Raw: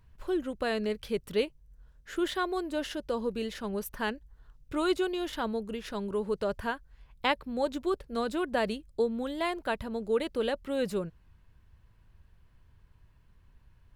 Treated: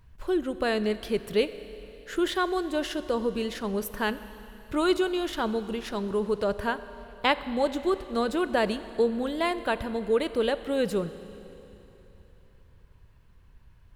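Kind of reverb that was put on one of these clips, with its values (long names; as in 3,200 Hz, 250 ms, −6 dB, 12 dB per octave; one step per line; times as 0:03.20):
four-comb reverb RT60 3.3 s, combs from 30 ms, DRR 13 dB
level +4 dB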